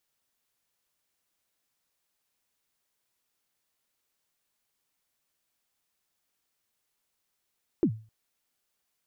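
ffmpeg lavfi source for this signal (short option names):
-f lavfi -i "aevalsrc='0.15*pow(10,-3*t/0.36)*sin(2*PI*(390*0.076/log(110/390)*(exp(log(110/390)*min(t,0.076)/0.076)-1)+110*max(t-0.076,0)))':d=0.26:s=44100"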